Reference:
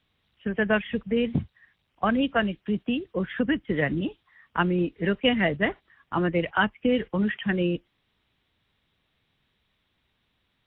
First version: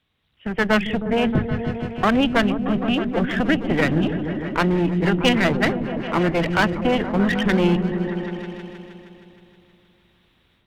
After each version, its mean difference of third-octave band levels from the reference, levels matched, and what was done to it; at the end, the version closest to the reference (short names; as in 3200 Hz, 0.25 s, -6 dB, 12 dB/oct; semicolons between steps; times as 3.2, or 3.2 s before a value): 10.0 dB: AGC gain up to 10.5 dB; one-sided clip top -24 dBFS; repeats that get brighter 0.157 s, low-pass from 200 Hz, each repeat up 1 oct, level -3 dB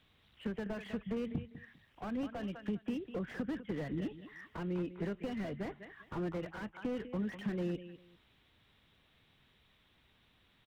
7.5 dB: compressor 6:1, threshold -38 dBFS, peak gain reduction 20 dB; on a send: feedback echo 0.2 s, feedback 22%, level -14.5 dB; on the sum: slew limiter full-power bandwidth 5.6 Hz; gain +3.5 dB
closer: second